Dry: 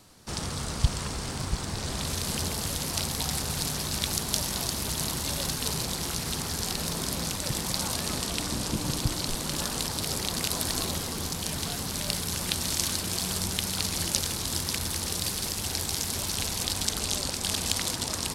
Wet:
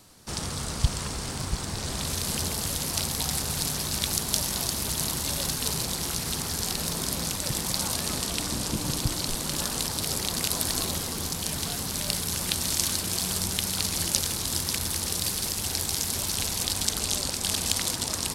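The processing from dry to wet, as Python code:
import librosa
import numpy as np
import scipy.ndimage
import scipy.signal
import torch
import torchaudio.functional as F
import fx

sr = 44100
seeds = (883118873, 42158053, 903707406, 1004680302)

y = fx.high_shelf(x, sr, hz=6900.0, db=4.5)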